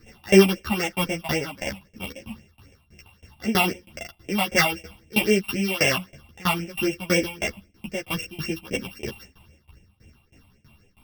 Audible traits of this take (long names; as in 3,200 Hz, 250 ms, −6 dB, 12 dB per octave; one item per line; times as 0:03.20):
a buzz of ramps at a fixed pitch in blocks of 16 samples
phaser sweep stages 6, 3.8 Hz, lowest notch 430–1,200 Hz
tremolo saw down 3.1 Hz, depth 95%
a shimmering, thickened sound